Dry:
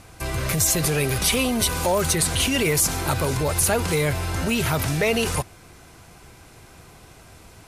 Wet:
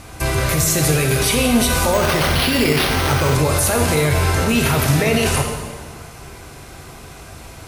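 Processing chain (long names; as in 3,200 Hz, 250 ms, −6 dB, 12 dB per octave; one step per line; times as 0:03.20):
brickwall limiter −17.5 dBFS, peak gain reduction 9.5 dB
dense smooth reverb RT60 1.7 s, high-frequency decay 0.8×, pre-delay 0 ms, DRR 1.5 dB
0:01.93–0:03.35: bad sample-rate conversion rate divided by 6×, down none, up hold
level +7.5 dB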